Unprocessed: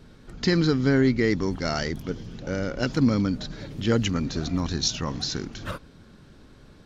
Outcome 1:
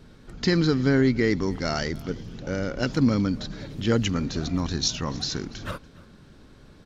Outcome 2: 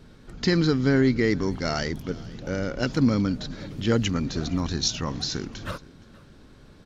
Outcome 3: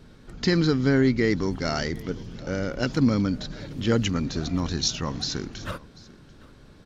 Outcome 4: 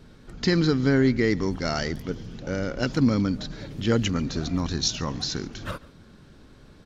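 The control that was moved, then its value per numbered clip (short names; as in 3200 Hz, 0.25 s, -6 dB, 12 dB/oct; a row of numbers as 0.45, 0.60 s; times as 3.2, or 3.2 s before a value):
echo, time: 0.287, 0.469, 0.74, 0.142 s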